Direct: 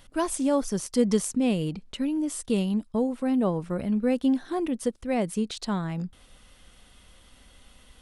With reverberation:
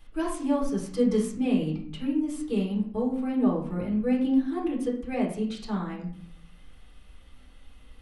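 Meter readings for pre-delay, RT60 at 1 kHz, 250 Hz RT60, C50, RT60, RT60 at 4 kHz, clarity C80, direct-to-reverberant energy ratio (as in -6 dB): 3 ms, 0.50 s, 0.75 s, 6.0 dB, 0.55 s, 0.35 s, 10.0 dB, -4.0 dB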